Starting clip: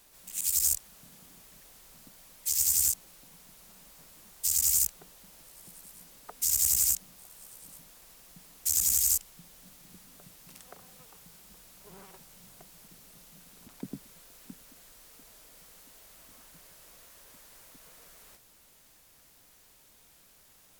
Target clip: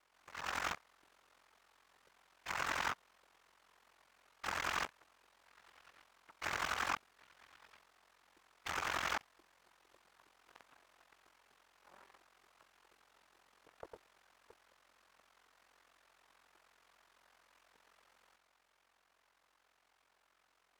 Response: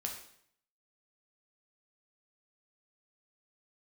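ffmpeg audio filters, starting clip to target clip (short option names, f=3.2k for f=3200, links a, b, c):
-af "aeval=exprs='val(0)*sin(2*PI*22*n/s)':c=same,aeval=exprs='abs(val(0))':c=same,bandpass=f=1.1k:t=q:w=0.97:csg=0,volume=2.5dB"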